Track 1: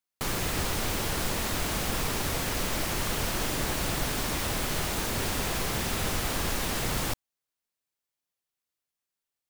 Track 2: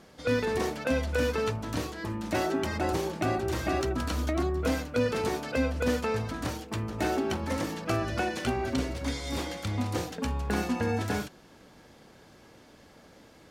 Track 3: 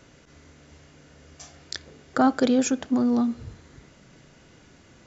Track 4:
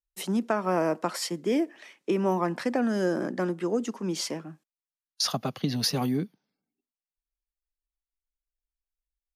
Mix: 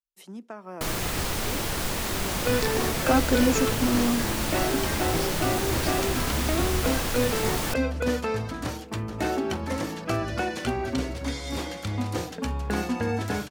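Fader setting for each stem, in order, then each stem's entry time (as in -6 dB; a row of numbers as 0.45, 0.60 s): +1.0, +1.5, -2.5, -13.5 dB; 0.60, 2.20, 0.90, 0.00 s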